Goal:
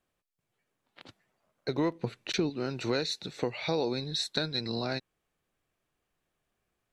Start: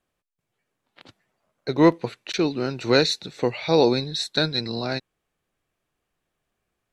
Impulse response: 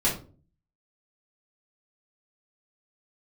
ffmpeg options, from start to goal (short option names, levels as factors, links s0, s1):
-filter_complex "[0:a]asettb=1/sr,asplit=3[s0][s1][s2];[s0]atrim=end=1.954[s3];[s1]atrim=start=1.95:end=2.5,asetpts=PTS-STARTPTS,afade=t=in:d=0.004:c=qsin,afade=t=out:st=0.546:d=0.004:c=qsin,lowshelf=f=320:g=10.5[s4];[s2]atrim=start=2.496[s5];[s3][s4]acrossfade=d=0.004:c1=hsin:c2=qsin[s6];[s6][s5]acrossfade=d=0.004:c1=qsin:c2=hsin,acompressor=threshold=0.0562:ratio=4,volume=0.75"